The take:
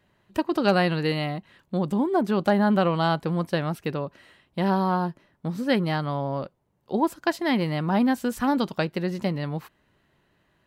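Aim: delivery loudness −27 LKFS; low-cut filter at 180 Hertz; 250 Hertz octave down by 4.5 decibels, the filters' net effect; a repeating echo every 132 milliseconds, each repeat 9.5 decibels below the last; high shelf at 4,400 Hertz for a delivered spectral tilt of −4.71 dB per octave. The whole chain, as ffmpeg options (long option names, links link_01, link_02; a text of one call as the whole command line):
ffmpeg -i in.wav -af "highpass=180,equalizer=frequency=250:width_type=o:gain=-4,highshelf=frequency=4400:gain=-8,aecho=1:1:132|264|396|528:0.335|0.111|0.0365|0.012,volume=0.5dB" out.wav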